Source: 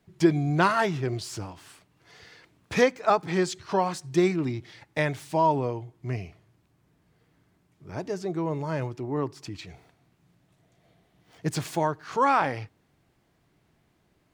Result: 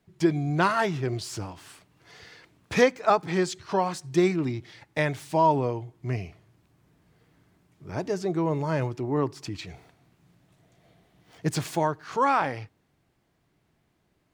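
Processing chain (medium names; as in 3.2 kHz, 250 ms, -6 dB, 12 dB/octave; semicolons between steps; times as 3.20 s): gain riding within 3 dB 2 s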